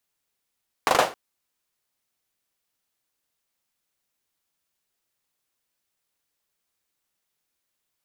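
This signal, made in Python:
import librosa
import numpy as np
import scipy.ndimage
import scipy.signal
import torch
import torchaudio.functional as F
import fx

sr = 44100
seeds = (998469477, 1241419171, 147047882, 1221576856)

y = fx.drum_clap(sr, seeds[0], length_s=0.27, bursts=4, spacing_ms=39, hz=660.0, decay_s=0.3)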